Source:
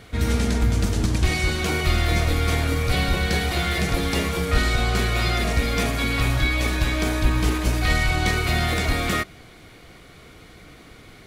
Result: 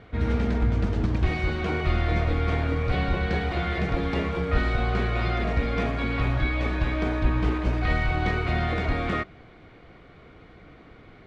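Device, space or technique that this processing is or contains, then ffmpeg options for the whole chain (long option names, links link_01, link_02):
phone in a pocket: -af "lowpass=3300,lowshelf=frequency=390:gain=-3,highshelf=frequency=2100:gain=-10.5"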